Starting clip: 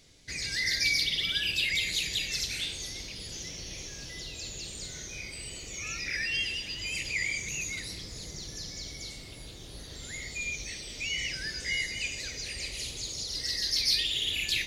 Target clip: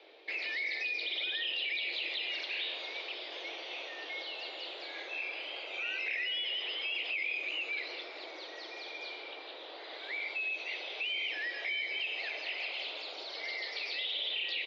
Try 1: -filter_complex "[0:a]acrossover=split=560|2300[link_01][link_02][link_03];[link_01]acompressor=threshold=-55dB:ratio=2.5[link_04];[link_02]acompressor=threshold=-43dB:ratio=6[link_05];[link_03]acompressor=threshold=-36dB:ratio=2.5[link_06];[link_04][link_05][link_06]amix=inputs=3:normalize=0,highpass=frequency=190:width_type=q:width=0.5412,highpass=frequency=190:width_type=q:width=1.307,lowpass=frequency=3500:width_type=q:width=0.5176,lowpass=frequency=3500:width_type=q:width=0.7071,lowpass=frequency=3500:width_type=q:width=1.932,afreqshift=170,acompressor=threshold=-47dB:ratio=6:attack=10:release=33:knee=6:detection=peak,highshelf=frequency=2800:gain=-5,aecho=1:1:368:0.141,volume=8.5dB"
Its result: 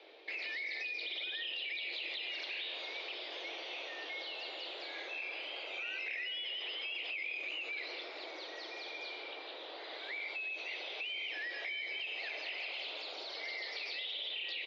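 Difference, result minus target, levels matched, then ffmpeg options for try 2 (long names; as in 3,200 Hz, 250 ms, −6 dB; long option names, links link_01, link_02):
downward compressor: peak gain reduction +5.5 dB
-filter_complex "[0:a]acrossover=split=560|2300[link_01][link_02][link_03];[link_01]acompressor=threshold=-55dB:ratio=2.5[link_04];[link_02]acompressor=threshold=-43dB:ratio=6[link_05];[link_03]acompressor=threshold=-36dB:ratio=2.5[link_06];[link_04][link_05][link_06]amix=inputs=3:normalize=0,highpass=frequency=190:width_type=q:width=0.5412,highpass=frequency=190:width_type=q:width=1.307,lowpass=frequency=3500:width_type=q:width=0.5176,lowpass=frequency=3500:width_type=q:width=0.7071,lowpass=frequency=3500:width_type=q:width=1.932,afreqshift=170,acompressor=threshold=-40.5dB:ratio=6:attack=10:release=33:knee=6:detection=peak,highshelf=frequency=2800:gain=-5,aecho=1:1:368:0.141,volume=8.5dB"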